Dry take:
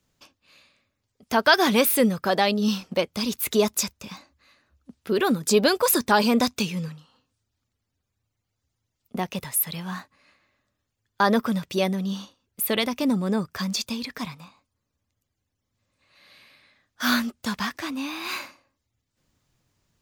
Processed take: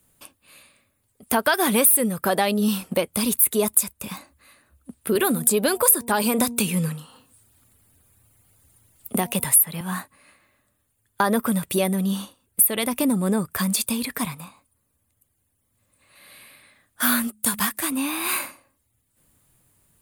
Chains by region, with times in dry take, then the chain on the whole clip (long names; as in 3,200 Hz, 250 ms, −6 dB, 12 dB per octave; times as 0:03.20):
0:05.15–0:09.81: hum removal 236.5 Hz, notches 4 + multiband upward and downward compressor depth 40%
0:17.27–0:17.92: high-shelf EQ 4,600 Hz +8.5 dB + hum removal 106.7 Hz, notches 2 + expander for the loud parts, over −45 dBFS
whole clip: high shelf with overshoot 7,500 Hz +10.5 dB, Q 3; downward compressor 2.5 to 1, threshold −25 dBFS; level +5.5 dB